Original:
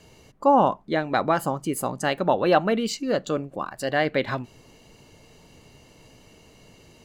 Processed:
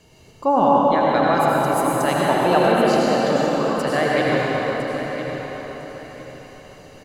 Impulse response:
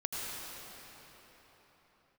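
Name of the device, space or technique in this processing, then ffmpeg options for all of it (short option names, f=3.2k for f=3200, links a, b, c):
cathedral: -filter_complex "[1:a]atrim=start_sample=2205[a];[0:a][a]afir=irnorm=-1:irlink=0,asettb=1/sr,asplit=3[b][c][d];[b]atrim=end=2.724[e];[c]atrim=start=2.72:end=3.36,asetpts=PTS-STARTPTS,afade=t=in:d=0.004:c=qsin,afade=t=out:st=0.636:d=0.004:c=qsin,lowpass=6.2k[f];[d]atrim=start=3.356[g];[e][f]acrossfade=d=0.004:c1=hsin:c2=qsin[h];[h][g]acrossfade=d=0.004:c1=qsin:c2=hsin,aecho=1:1:1006|2012|3018:0.266|0.0718|0.0194,volume=1dB"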